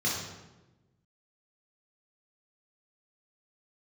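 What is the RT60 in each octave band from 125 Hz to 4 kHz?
1.6 s, 1.5 s, 1.2 s, 1.0 s, 0.90 s, 0.75 s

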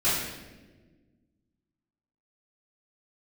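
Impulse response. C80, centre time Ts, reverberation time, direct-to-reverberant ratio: 3.5 dB, 75 ms, 1.3 s, -13.0 dB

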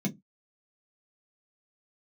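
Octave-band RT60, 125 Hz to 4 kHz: 0.25 s, 0.25 s, 0.15 s, 0.10 s, 0.10 s, 0.10 s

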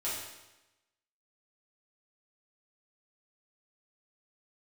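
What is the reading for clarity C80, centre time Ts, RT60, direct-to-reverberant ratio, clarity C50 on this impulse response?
4.0 dB, 66 ms, 1.0 s, -9.5 dB, 1.0 dB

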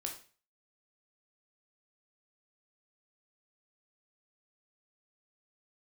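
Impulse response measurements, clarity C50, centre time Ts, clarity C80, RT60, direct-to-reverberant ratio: 8.0 dB, 20 ms, 13.5 dB, 0.40 s, 1.5 dB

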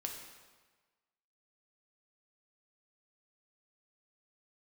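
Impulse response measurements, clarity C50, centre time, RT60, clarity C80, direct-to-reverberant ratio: 4.5 dB, 44 ms, 1.4 s, 6.5 dB, 1.0 dB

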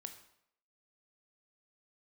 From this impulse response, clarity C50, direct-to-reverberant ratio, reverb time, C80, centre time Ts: 10.0 dB, 6.5 dB, 0.70 s, 12.5 dB, 13 ms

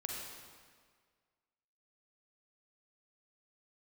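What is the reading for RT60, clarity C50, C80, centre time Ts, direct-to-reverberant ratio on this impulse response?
1.8 s, 0.0 dB, 1.5 dB, 92 ms, -1.0 dB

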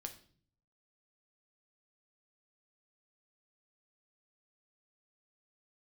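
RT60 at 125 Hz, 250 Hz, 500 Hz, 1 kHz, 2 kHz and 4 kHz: 0.95 s, 0.75 s, 0.55 s, 0.45 s, 0.40 s, 0.45 s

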